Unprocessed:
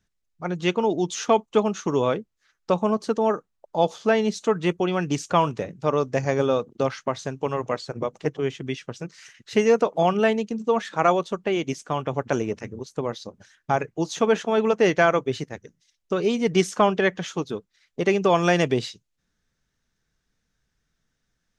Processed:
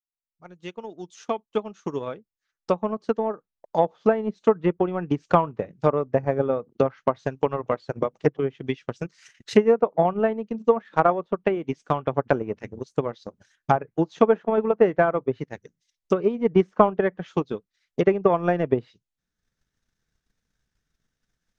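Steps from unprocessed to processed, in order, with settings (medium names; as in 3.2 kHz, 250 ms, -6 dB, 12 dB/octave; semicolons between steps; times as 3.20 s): fade-in on the opening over 4.76 s; low-pass that closes with the level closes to 1.3 kHz, closed at -20 dBFS; transient shaper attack +9 dB, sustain -6 dB; trim -3.5 dB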